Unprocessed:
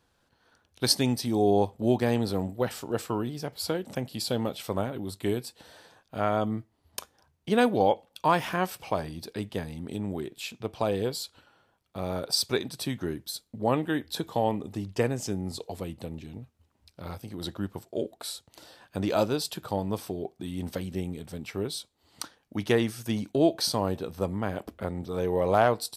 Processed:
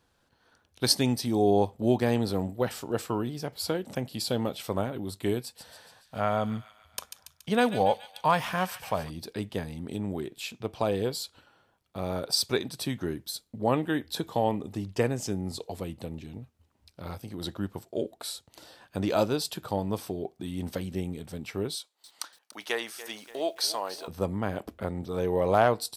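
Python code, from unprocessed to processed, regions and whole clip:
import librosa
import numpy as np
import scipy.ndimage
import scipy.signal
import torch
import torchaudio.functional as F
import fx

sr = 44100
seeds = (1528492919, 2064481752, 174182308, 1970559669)

y = fx.chain(x, sr, fx.peak_eq(hz=340.0, db=-12.0, octaves=0.41),
    fx.echo_wet_highpass(ms=141, feedback_pct=56, hz=2200.0, wet_db=-7.5), at=(5.41, 9.1))
y = fx.chain(y, sr, fx.highpass(hz=720.0, slope=12),
    fx.echo_crushed(ms=288, feedback_pct=55, bits=8, wet_db=-14), at=(21.75, 24.08))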